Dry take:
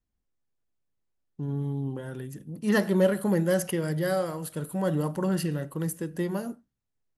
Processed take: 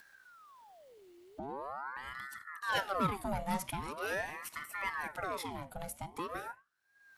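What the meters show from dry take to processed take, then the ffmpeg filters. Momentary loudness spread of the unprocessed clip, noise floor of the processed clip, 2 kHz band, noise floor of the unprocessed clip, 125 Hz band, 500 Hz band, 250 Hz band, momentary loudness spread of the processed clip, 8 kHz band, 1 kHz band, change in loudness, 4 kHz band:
13 LU, -68 dBFS, -1.5 dB, -82 dBFS, -17.0 dB, -14.0 dB, -16.5 dB, 23 LU, -8.5 dB, +1.5 dB, -10.0 dB, -2.5 dB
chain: -af "equalizer=f=160:t=o:w=0.33:g=-12,equalizer=f=2.5k:t=o:w=0.33:g=10,equalizer=f=4k:t=o:w=0.33:g=6,acompressor=mode=upward:threshold=-28dB:ratio=2.5,aeval=exprs='val(0)*sin(2*PI*990*n/s+990*0.65/0.43*sin(2*PI*0.43*n/s))':c=same,volume=-6.5dB"

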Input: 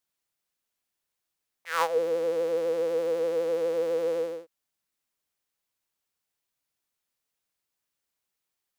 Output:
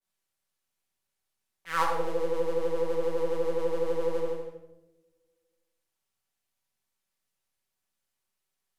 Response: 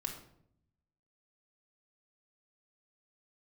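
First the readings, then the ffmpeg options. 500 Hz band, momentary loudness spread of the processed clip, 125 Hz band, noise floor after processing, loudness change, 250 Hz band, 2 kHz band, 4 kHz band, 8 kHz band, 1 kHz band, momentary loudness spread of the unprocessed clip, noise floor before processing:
-2.5 dB, 5 LU, +7.5 dB, -84 dBFS, -2.0 dB, +1.0 dB, -1.0 dB, -2.5 dB, n/a, +1.5 dB, 6 LU, -84 dBFS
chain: -filter_complex "[0:a]aeval=exprs='if(lt(val(0),0),0.708*val(0),val(0))':c=same[a];[1:a]atrim=start_sample=2205,asetrate=27783,aresample=44100[b];[a][b]afir=irnorm=-1:irlink=0,adynamicequalizer=threshold=0.0112:dfrequency=1600:dqfactor=0.7:tfrequency=1600:tqfactor=0.7:attack=5:release=100:ratio=0.375:range=1.5:mode=cutabove:tftype=highshelf,volume=-1.5dB"

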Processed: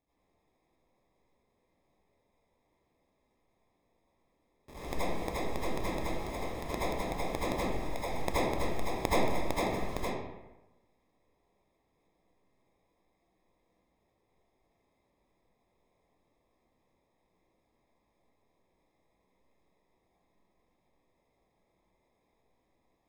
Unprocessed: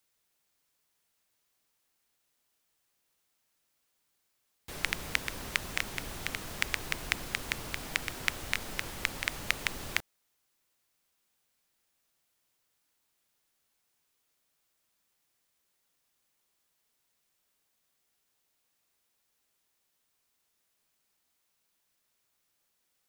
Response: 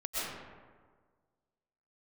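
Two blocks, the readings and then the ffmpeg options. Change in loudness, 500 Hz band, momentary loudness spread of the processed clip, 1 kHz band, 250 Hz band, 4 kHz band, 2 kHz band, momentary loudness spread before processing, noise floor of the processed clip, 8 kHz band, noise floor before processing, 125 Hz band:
-1.0 dB, +12.5 dB, 8 LU, +8.0 dB, +9.5 dB, -7.5 dB, -8.0 dB, 5 LU, -77 dBFS, -6.5 dB, -78 dBFS, +5.0 dB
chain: -filter_complex "[0:a]acrusher=samples=30:mix=1:aa=0.000001[a];[1:a]atrim=start_sample=2205,asetrate=70560,aresample=44100[b];[a][b]afir=irnorm=-1:irlink=0"

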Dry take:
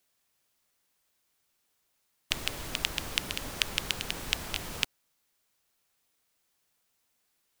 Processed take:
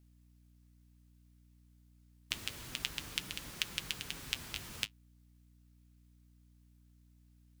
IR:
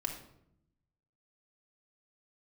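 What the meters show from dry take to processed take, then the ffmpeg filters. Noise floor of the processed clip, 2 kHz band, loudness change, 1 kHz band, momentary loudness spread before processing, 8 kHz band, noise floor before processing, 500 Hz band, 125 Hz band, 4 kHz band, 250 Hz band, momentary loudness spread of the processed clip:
-64 dBFS, -7.5 dB, -7.0 dB, -10.5 dB, 4 LU, -6.5 dB, -76 dBFS, -12.5 dB, -6.5 dB, -7.0 dB, -8.0 dB, 4 LU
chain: -af "highpass=43,equalizer=f=630:t=o:w=1.5:g=-8,flanger=delay=5.4:depth=5.4:regen=-50:speed=0.28:shape=triangular,aeval=exprs='val(0)+0.001*(sin(2*PI*60*n/s)+sin(2*PI*2*60*n/s)/2+sin(2*PI*3*60*n/s)/3+sin(2*PI*4*60*n/s)/4+sin(2*PI*5*60*n/s)/5)':c=same,acrusher=bits=5:mode=log:mix=0:aa=0.000001,volume=-2.5dB"

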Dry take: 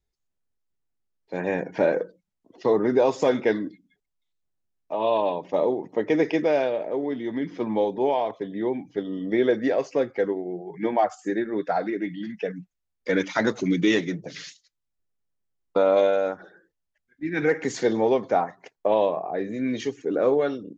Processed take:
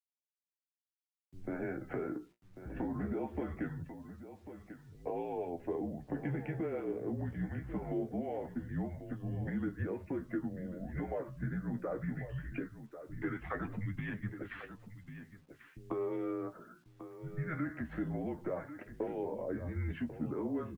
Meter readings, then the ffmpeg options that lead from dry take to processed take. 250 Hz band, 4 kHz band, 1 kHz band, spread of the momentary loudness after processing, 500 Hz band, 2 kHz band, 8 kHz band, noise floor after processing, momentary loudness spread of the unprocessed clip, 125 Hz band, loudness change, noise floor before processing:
-11.0 dB, under -25 dB, -18.0 dB, 13 LU, -18.0 dB, -14.5 dB, n/a, under -85 dBFS, 11 LU, -1.0 dB, -14.5 dB, -80 dBFS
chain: -filter_complex "[0:a]acrossover=split=210 2200:gain=0.224 1 0.2[a][b][c];[a][b][c]amix=inputs=3:normalize=0,acrossover=split=190|2000[d][e][f];[e]alimiter=limit=-17.5dB:level=0:latency=1:release=20[g];[d][g][f]amix=inputs=3:normalize=0,acrossover=split=210[h][i];[i]adelay=150[j];[h][j]amix=inputs=2:normalize=0,adynamicequalizer=threshold=0.00355:dfrequency=200:dqfactor=4.8:tfrequency=200:tqfactor=4.8:attack=5:release=100:ratio=0.375:range=2.5:mode=cutabove:tftype=bell,acompressor=threshold=-37dB:ratio=4,highpass=f=180:t=q:w=0.5412,highpass=f=180:t=q:w=1.307,lowpass=f=3k:t=q:w=0.5176,lowpass=f=3k:t=q:w=0.7071,lowpass=f=3k:t=q:w=1.932,afreqshift=-170,asplit=2[k][l];[l]aecho=0:1:1093:0.251[m];[k][m]amix=inputs=2:normalize=0,acrusher=bits=11:mix=0:aa=0.000001,flanger=delay=9.2:depth=7.9:regen=39:speed=0.21:shape=triangular,volume=4dB"

